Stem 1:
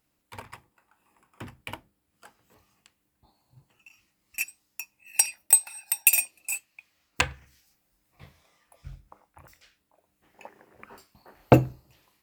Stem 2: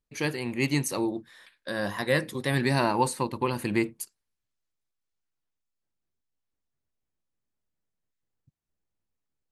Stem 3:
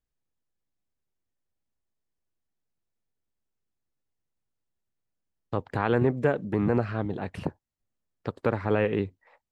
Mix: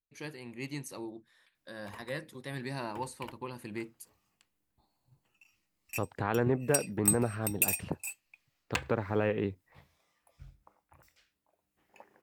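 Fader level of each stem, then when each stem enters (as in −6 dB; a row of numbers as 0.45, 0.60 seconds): −9.0, −13.5, −5.0 decibels; 1.55, 0.00, 0.45 seconds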